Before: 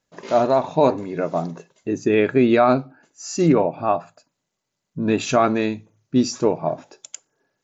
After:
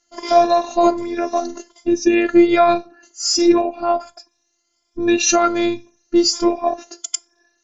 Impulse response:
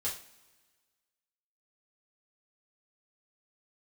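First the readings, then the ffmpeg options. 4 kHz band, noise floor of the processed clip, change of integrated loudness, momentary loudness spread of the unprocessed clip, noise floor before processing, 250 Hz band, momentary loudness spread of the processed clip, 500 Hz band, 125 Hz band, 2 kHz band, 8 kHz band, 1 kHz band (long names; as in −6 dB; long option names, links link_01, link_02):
+11.5 dB, −69 dBFS, +3.0 dB, 17 LU, −80 dBFS, +3.5 dB, 13 LU, +2.0 dB, −14.0 dB, +3.5 dB, can't be measured, +4.0 dB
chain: -filter_complex "[0:a]afftfilt=real='re*pow(10,13/40*sin(2*PI*(1.7*log(max(b,1)*sr/1024/100)/log(2)-(1.3)*(pts-256)/sr)))':imag='im*pow(10,13/40*sin(2*PI*(1.7*log(max(b,1)*sr/1024/100)/log(2)-(1.3)*(pts-256)/sr)))':win_size=1024:overlap=0.75,asplit=2[link_01][link_02];[link_02]acompressor=threshold=-21dB:ratio=6,volume=0dB[link_03];[link_01][link_03]amix=inputs=2:normalize=0,afftfilt=real='hypot(re,im)*cos(PI*b)':imag='0':win_size=512:overlap=0.75,lowpass=frequency=5700:width_type=q:width=3.7,volume=1.5dB"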